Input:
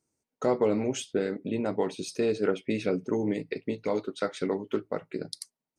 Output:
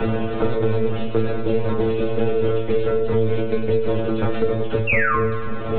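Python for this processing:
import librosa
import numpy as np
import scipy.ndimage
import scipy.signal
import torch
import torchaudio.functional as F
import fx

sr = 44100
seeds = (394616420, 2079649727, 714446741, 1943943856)

p1 = fx.bin_compress(x, sr, power=0.2)
p2 = fx.dereverb_blind(p1, sr, rt60_s=0.59)
p3 = fx.dynamic_eq(p2, sr, hz=400.0, q=1.5, threshold_db=-33.0, ratio=4.0, max_db=5)
p4 = fx.rider(p3, sr, range_db=4, speed_s=0.5)
p5 = p3 + (p4 * 10.0 ** (2.0 / 20.0))
p6 = fx.lpc_vocoder(p5, sr, seeds[0], excitation='pitch_kept', order=8)
p7 = fx.spec_paint(p6, sr, seeds[1], shape='fall', start_s=4.87, length_s=0.29, low_hz=1000.0, high_hz=2800.0, level_db=-4.0)
p8 = fx.stiff_resonator(p7, sr, f0_hz=110.0, decay_s=0.44, stiffness=0.002)
p9 = p8 + fx.echo_split(p8, sr, split_hz=430.0, low_ms=544, high_ms=100, feedback_pct=52, wet_db=-11, dry=0)
y = fx.band_squash(p9, sr, depth_pct=100)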